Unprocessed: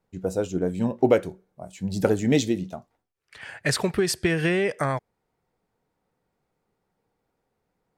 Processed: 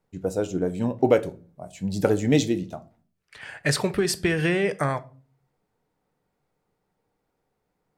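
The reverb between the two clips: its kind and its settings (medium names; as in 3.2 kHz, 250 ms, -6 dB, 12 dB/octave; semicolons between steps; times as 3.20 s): simulated room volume 250 m³, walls furnished, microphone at 0.41 m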